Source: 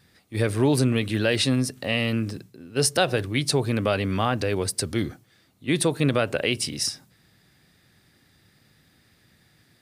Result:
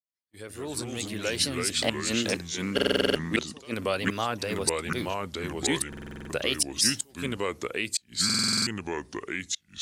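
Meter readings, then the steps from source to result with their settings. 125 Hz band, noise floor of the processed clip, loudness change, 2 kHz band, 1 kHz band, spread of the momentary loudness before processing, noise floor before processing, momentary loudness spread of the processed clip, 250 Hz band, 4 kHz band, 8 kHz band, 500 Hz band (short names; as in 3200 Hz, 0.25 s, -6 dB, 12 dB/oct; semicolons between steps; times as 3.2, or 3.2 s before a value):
-10.5 dB, -66 dBFS, -3.5 dB, -1.0 dB, -3.0 dB, 9 LU, -62 dBFS, 11 LU, -5.5 dB, +1.5 dB, +2.0 dB, -4.5 dB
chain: opening faded in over 1.89 s; gate -52 dBFS, range -18 dB; spectral gain 1.74–3.74, 200–9400 Hz +8 dB; low shelf 100 Hz +5.5 dB; harmonic-percussive split percussive +5 dB; tone controls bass -7 dB, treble +8 dB; wow and flutter 120 cents; flipped gate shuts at -2 dBFS, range -32 dB; echoes that change speed 87 ms, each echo -3 st, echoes 2; stuck buffer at 2.74/5.88/8.25, samples 2048, times 8; gain -8 dB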